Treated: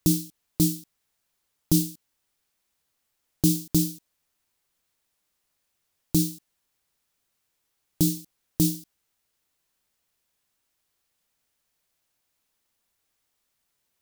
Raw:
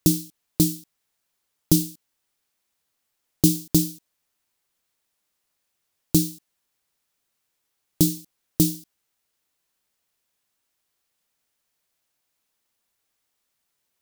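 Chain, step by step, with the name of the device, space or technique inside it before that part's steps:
low-shelf EQ 120 Hz +5.5 dB
limiter into clipper (brickwall limiter −8.5 dBFS, peak gain reduction 6.5 dB; hard clipping −10 dBFS, distortion −34 dB)

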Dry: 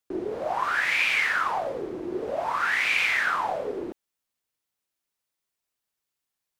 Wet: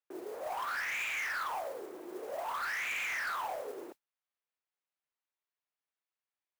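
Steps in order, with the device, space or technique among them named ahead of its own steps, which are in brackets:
carbon microphone (band-pass filter 500–2,800 Hz; soft clipping −26 dBFS, distortion −11 dB; noise that follows the level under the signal 18 dB)
level −6 dB

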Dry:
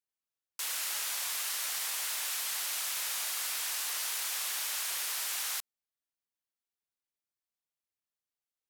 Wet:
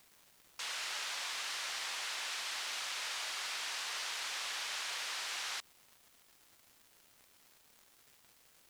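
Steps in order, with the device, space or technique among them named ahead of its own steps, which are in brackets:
78 rpm shellac record (band-pass filter 110–4,900 Hz; surface crackle 380 per second −51 dBFS; white noise bed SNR 25 dB)

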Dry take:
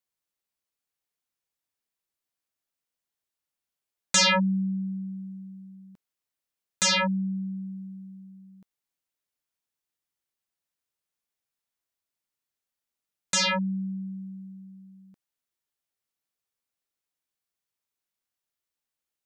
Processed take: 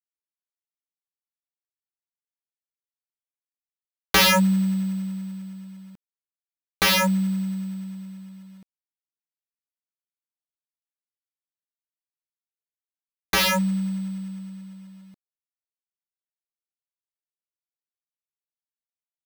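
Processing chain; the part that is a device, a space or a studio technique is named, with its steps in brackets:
low-shelf EQ 330 Hz +2.5 dB
early companding sampler (sample-rate reduction 8,100 Hz, jitter 0%; log-companded quantiser 6 bits)
level +3.5 dB

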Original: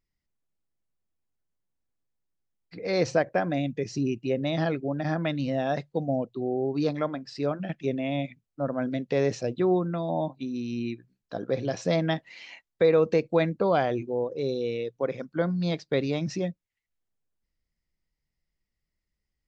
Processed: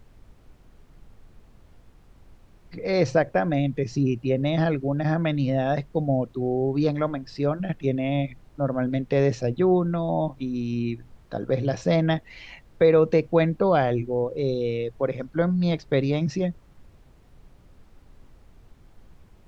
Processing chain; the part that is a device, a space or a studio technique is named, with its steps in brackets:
car interior (parametric band 120 Hz +6 dB; high-shelf EQ 4,900 Hz −7 dB; brown noise bed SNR 24 dB)
level +3 dB

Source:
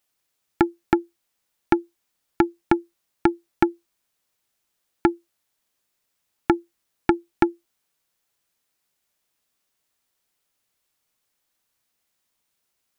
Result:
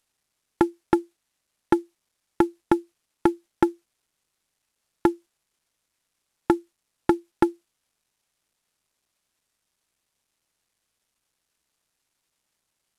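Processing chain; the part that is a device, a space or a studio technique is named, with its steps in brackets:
early wireless headset (high-pass filter 160 Hz 12 dB per octave; variable-slope delta modulation 64 kbit/s)

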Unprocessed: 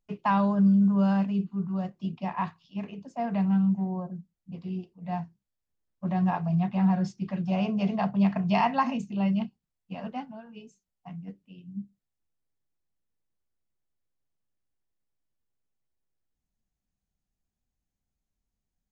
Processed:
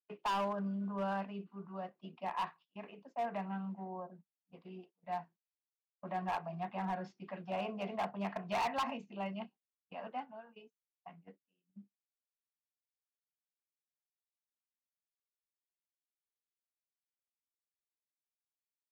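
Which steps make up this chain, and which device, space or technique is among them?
walkie-talkie (band-pass filter 460–2,600 Hz; hard clipping −28 dBFS, distortion −8 dB; noise gate −55 dBFS, range −22 dB)
level −3 dB

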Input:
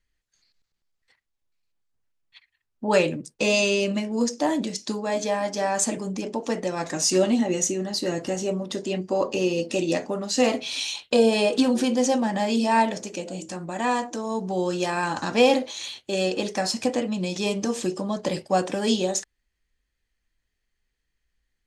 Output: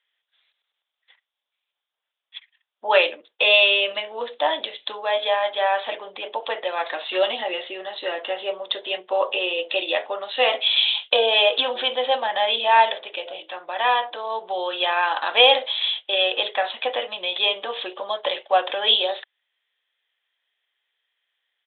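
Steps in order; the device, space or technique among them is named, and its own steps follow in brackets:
musical greeting card (downsampling to 8,000 Hz; high-pass filter 570 Hz 24 dB per octave; parametric band 3,400 Hz +11 dB 0.42 octaves)
level +5.5 dB

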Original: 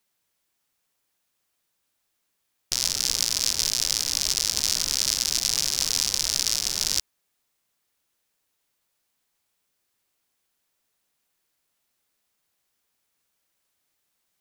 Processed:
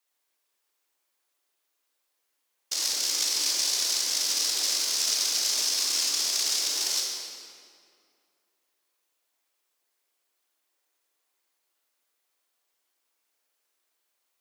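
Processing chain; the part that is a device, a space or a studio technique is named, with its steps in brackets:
whispering ghost (random phases in short frames; high-pass filter 310 Hz 24 dB per octave; convolution reverb RT60 2.3 s, pre-delay 21 ms, DRR −1.5 dB)
level −4.5 dB

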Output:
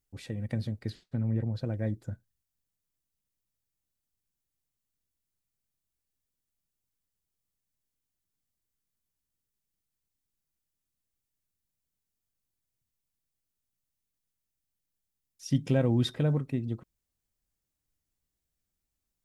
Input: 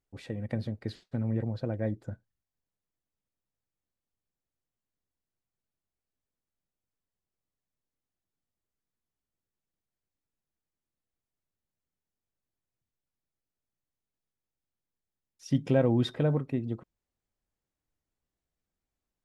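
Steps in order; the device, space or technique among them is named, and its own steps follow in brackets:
smiley-face EQ (low-shelf EQ 170 Hz +3.5 dB; parametric band 650 Hz −4.5 dB 2.5 octaves; high-shelf EQ 5,300 Hz +9 dB)
0:00.90–0:01.55: high-shelf EQ 3,700 Hz −8.5 dB

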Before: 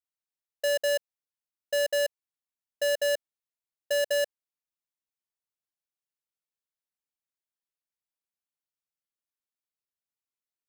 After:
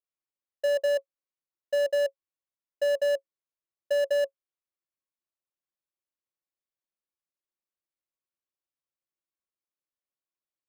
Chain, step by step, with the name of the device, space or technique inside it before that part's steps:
inside a helmet (high-shelf EQ 5,000 Hz −10 dB; hollow resonant body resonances 350/550/1,100 Hz, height 10 dB, ringing for 75 ms)
level −3.5 dB

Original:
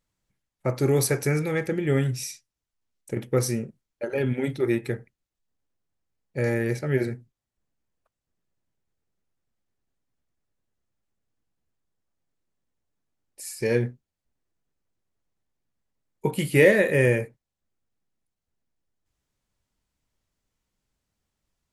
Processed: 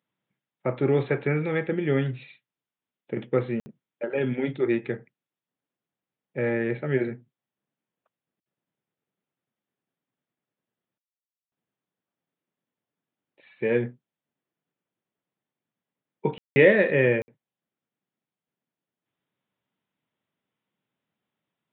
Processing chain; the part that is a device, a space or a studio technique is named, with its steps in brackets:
call with lost packets (high-pass filter 140 Hz 24 dB per octave; downsampling to 8,000 Hz; dropped packets of 60 ms bursts)

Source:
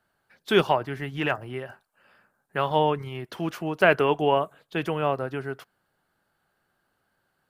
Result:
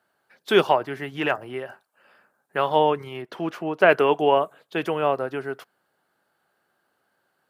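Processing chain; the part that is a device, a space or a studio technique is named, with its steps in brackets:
filter by subtraction (in parallel: low-pass filter 430 Hz 12 dB per octave + polarity inversion)
0:03.22–0:03.89: on the sum: high-shelf EQ 4,900 Hz −10.5 dB
level +1.5 dB

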